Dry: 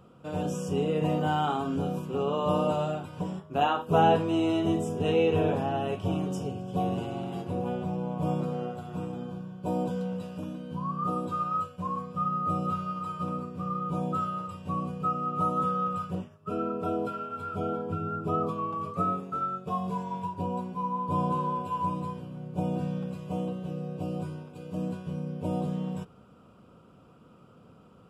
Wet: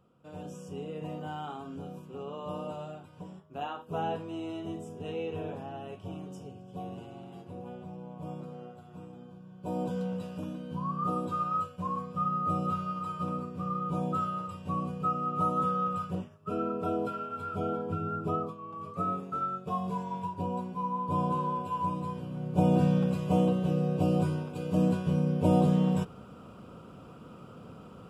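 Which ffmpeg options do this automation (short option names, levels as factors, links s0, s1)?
-af "volume=9.44,afade=t=in:st=9.4:d=0.61:silence=0.298538,afade=t=out:st=18.27:d=0.31:silence=0.237137,afade=t=in:st=18.58:d=0.65:silence=0.251189,afade=t=in:st=22.03:d=0.78:silence=0.375837"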